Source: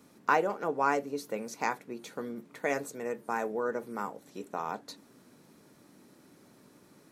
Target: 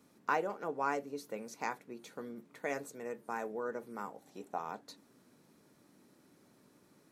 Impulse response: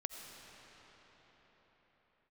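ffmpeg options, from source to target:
-filter_complex "[0:a]asettb=1/sr,asplit=3[link_01][link_02][link_03];[link_01]atrim=end=4.144[link_04];[link_02]atrim=start=4.14:end=4.58,asetpts=PTS-STARTPTS,afade=type=in:duration=0.004:curve=qsin,afade=type=out:start_time=0.436:duration=0.004:curve=qsin,equalizer=frequency=770:width_type=o:width=0.38:gain=10[link_05];[link_03]atrim=start=4.576[link_06];[link_04][link_05]acrossfade=duration=0.004:curve1=hsin:curve2=qsin[link_07];[link_07][link_06]acrossfade=duration=0.004:curve1=qsin:curve2=hsin,volume=-6.5dB"

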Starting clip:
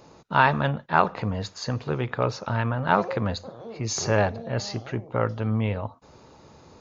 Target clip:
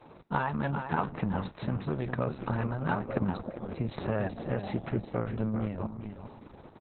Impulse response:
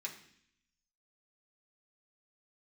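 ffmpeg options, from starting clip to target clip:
-filter_complex "[0:a]lowpass=frequency=2000:poles=1,adynamicequalizer=threshold=0.00794:dfrequency=190:dqfactor=2.1:tfrequency=190:tqfactor=2.1:attack=5:release=100:ratio=0.375:range=3.5:mode=boostabove:tftype=bell,acompressor=threshold=-26dB:ratio=5,aecho=1:1:400|800:0.376|0.0601,asplit=2[link_01][link_02];[1:a]atrim=start_sample=2205[link_03];[link_02][link_03]afir=irnorm=-1:irlink=0,volume=-15.5dB[link_04];[link_01][link_04]amix=inputs=2:normalize=0" -ar 48000 -c:a libopus -b:a 6k

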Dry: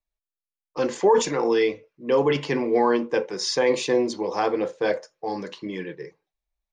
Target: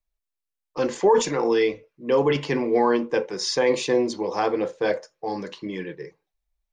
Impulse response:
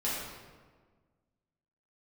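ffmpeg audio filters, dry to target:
-af "lowshelf=frequency=67:gain=8"

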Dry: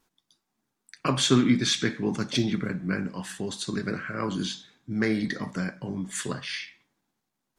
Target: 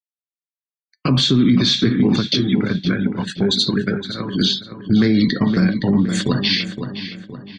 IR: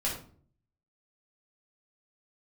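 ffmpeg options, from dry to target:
-filter_complex "[0:a]asettb=1/sr,asplit=3[link_01][link_02][link_03];[link_01]atrim=end=2.204[link_04];[link_02]atrim=start=2.2:end=4.41,asetpts=PTS-STARTPTS,afade=type=in:duration=0.004:curve=qsin,afade=type=out:start_time=2.206:duration=0.004:curve=qsin,acompressor=threshold=-33dB:ratio=4[link_05];[link_03]atrim=start=4.406[link_06];[link_04][link_05]acrossfade=duration=0.004:curve1=hsin:curve2=qsin[link_07];[link_07][link_06]acrossfade=duration=0.004:curve1=qsin:curve2=hsin,afftfilt=real='re*gte(hypot(re,im),0.01)':imag='im*gte(hypot(re,im),0.01)':win_size=1024:overlap=0.75,acrossover=split=340[link_08][link_09];[link_09]acompressor=threshold=-39dB:ratio=6[link_10];[link_08][link_10]amix=inputs=2:normalize=0,flanger=delay=3.9:depth=1.4:regen=86:speed=0.96:shape=sinusoidal,equalizer=frequency=4100:width=1.9:gain=13.5,agate=range=-32dB:threshold=-41dB:ratio=16:detection=peak,lowpass=5400,asplit=2[link_11][link_12];[link_12]adelay=516,lowpass=frequency=3000:poles=1,volume=-10dB,asplit=2[link_13][link_14];[link_14]adelay=516,lowpass=frequency=3000:poles=1,volume=0.45,asplit=2[link_15][link_16];[link_16]adelay=516,lowpass=frequency=3000:poles=1,volume=0.45,asplit=2[link_17][link_18];[link_18]adelay=516,lowpass=frequency=3000:poles=1,volume=0.45,asplit=2[link_19][link_20];[link_20]adelay=516,lowpass=frequency=3000:poles=1,volume=0.45[link_21];[link_11][link_13][link_15][link_17][link_19][link_21]amix=inputs=6:normalize=0,alimiter=level_in=27.5dB:limit=-1dB:release=50:level=0:latency=1,volume=-6dB"

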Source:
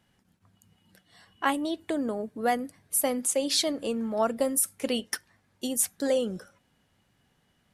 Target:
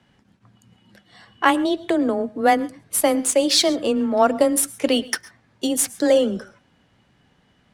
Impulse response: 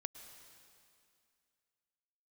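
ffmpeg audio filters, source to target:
-filter_complex "[0:a]adynamicsmooth=sensitivity=7.5:basefreq=6300,afreqshift=15,asplit=2[link_01][link_02];[1:a]atrim=start_sample=2205,afade=type=out:start_time=0.19:duration=0.01,atrim=end_sample=8820[link_03];[link_02][link_03]afir=irnorm=-1:irlink=0,volume=6dB[link_04];[link_01][link_04]amix=inputs=2:normalize=0,volume=2dB"

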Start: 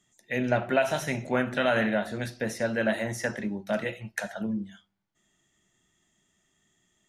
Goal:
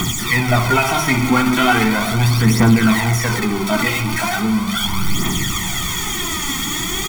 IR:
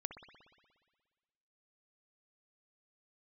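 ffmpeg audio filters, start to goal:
-filter_complex "[0:a]aeval=exprs='val(0)+0.5*0.0501*sgn(val(0))':channel_layout=same,bandreject=frequency=50:width_type=h:width=6,bandreject=frequency=100:width_type=h:width=6,bandreject=frequency=150:width_type=h:width=6,bandreject=frequency=200:width_type=h:width=6,bandreject=frequency=250:width_type=h:width=6,aecho=1:1:0.9:0.99,acrossover=split=3400[link_01][link_02];[link_02]alimiter=level_in=1.5dB:limit=-24dB:level=0:latency=1,volume=-1.5dB[link_03];[link_01][link_03]amix=inputs=2:normalize=0,aphaser=in_gain=1:out_gain=1:delay=3.8:decay=0.59:speed=0.38:type=triangular,asplit=2[link_04][link_05];[1:a]atrim=start_sample=2205[link_06];[link_05][link_06]afir=irnorm=-1:irlink=0,volume=5dB[link_07];[link_04][link_07]amix=inputs=2:normalize=0"

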